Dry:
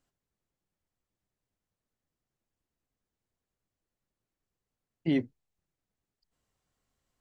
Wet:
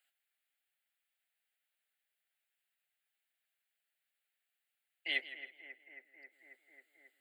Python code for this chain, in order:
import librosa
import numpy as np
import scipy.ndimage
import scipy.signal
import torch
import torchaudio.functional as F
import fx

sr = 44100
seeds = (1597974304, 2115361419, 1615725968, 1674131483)

y = scipy.signal.sosfilt(scipy.signal.butter(4, 870.0, 'highpass', fs=sr, output='sos'), x)
y = fx.fixed_phaser(y, sr, hz=2500.0, stages=4)
y = fx.echo_bbd(y, sr, ms=270, stages=4096, feedback_pct=81, wet_db=-13.0)
y = fx.echo_warbled(y, sr, ms=162, feedback_pct=31, rate_hz=2.8, cents=72, wet_db=-15.0)
y = F.gain(torch.from_numpy(y), 8.5).numpy()